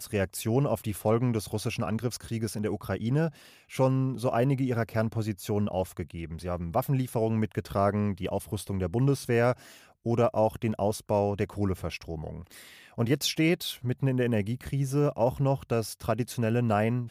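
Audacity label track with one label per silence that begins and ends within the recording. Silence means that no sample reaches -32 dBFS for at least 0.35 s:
3.290000	3.740000	silence
9.530000	10.060000	silence
12.510000	12.980000	silence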